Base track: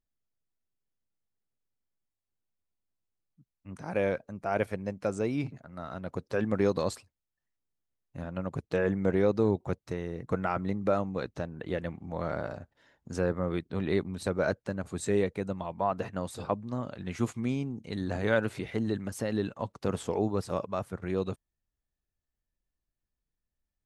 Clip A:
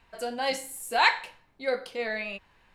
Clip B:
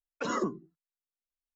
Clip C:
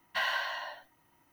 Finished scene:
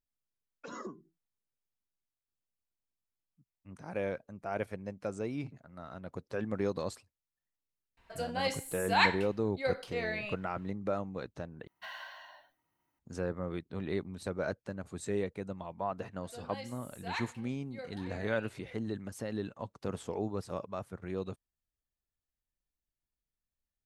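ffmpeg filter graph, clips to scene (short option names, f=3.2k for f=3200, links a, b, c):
-filter_complex "[1:a]asplit=2[a][b];[0:a]volume=-6.5dB[c];[2:a]bandreject=f=2.9k:w=22[d];[b]asplit=2[e][f];[f]adelay=874.6,volume=-14dB,highshelf=f=4k:g=-19.7[g];[e][g]amix=inputs=2:normalize=0[h];[c]asplit=2[i][j];[i]atrim=end=11.674[k];[3:a]atrim=end=1.32,asetpts=PTS-STARTPTS,volume=-14dB[l];[j]atrim=start=12.986[m];[d]atrim=end=1.55,asetpts=PTS-STARTPTS,volume=-12.5dB,afade=t=in:d=0.004:c=hsin,afade=t=out:st=1.546:d=0.004:c=hsin,adelay=430[n];[a]atrim=end=2.74,asetpts=PTS-STARTPTS,volume=-4.5dB,afade=t=in:d=0.004:c=hsin,afade=t=out:st=2.736:d=0.004:c=hsin,adelay=7970[o];[h]atrim=end=2.74,asetpts=PTS-STARTPTS,volume=-17dB,afade=t=in:d=0.004:c=hsin,afade=t=out:st=2.736:d=0.004:c=hsin,adelay=16110[p];[k][l]acrossfade=d=0.004:c1=hsin:c2=hsin[q];[q][m]acrossfade=d=0.004:c1=hsin:c2=hsin[r];[r][n][o][p]amix=inputs=4:normalize=0"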